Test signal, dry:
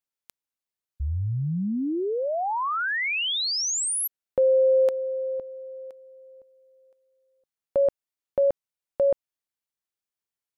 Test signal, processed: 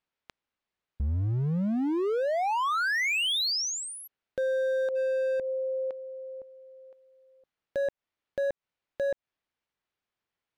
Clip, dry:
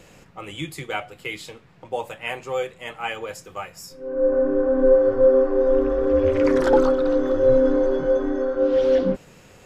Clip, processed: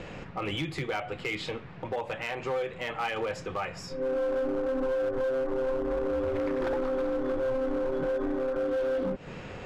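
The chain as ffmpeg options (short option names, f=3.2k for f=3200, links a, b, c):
-af "lowpass=3.1k,acompressor=threshold=-32dB:ratio=8:attack=0.43:release=138:knee=6:detection=rms,volume=34dB,asoftclip=hard,volume=-34dB,volume=8.5dB"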